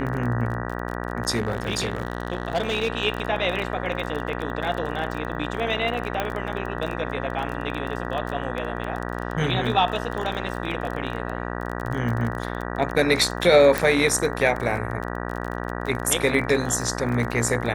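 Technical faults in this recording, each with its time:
mains buzz 60 Hz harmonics 32 −30 dBFS
surface crackle 27 per second −28 dBFS
0:01.35–0:02.88: clipping −18.5 dBFS
0:06.20: click −11 dBFS
0:13.78: click

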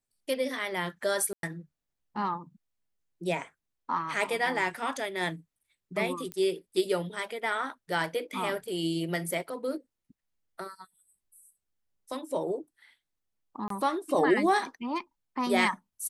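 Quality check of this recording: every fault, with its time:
0:01.33–0:01.43: drop-out 102 ms
0:06.32: click −21 dBFS
0:13.68–0:13.70: drop-out 23 ms

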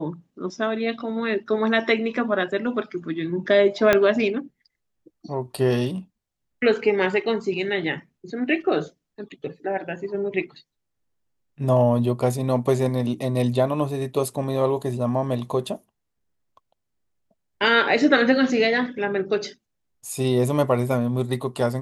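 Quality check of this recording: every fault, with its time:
0:03.93: click −4 dBFS

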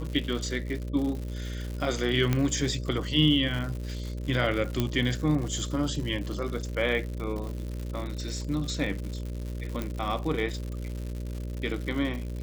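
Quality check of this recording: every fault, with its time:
mains buzz 60 Hz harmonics 10 −34 dBFS
surface crackle 170 per second −34 dBFS
0:02.33: click −12 dBFS
0:04.80: click −12 dBFS
0:09.82: click −17 dBFS

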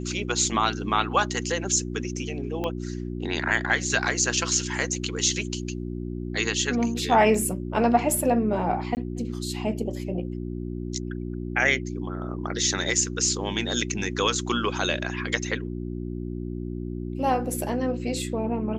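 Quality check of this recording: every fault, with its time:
mains hum 60 Hz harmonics 6 −32 dBFS
0:02.64: click −16 dBFS
0:08.95–0:08.97: drop-out 19 ms

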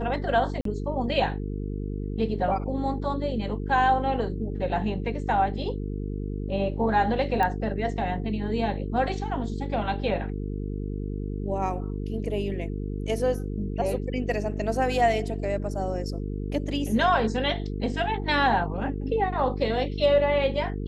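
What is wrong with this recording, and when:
mains buzz 50 Hz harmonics 9 −31 dBFS
0:00.61–0:00.65: drop-out 43 ms
0:07.43: click −14 dBFS

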